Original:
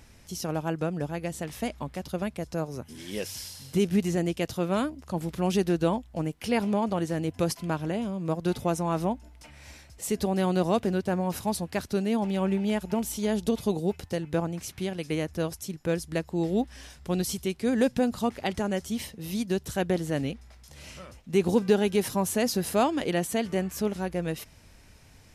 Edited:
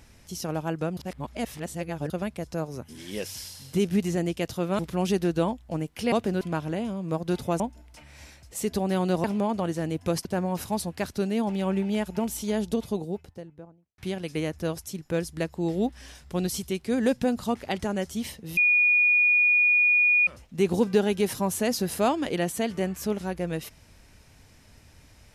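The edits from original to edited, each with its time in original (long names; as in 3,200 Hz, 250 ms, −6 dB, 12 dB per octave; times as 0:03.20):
0:00.97–0:02.10: reverse
0:04.79–0:05.24: remove
0:06.57–0:07.58: swap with 0:10.71–0:11.00
0:08.77–0:09.07: remove
0:13.19–0:14.73: fade out and dull
0:19.32–0:21.02: beep over 2,450 Hz −17 dBFS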